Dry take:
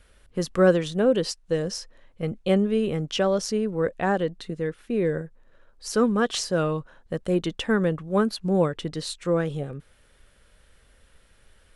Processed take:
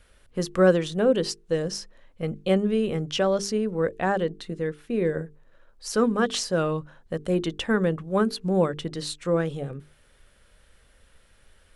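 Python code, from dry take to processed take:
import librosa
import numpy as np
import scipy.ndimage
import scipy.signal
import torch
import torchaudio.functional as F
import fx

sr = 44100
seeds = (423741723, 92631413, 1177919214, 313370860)

y = fx.hum_notches(x, sr, base_hz=50, count=9)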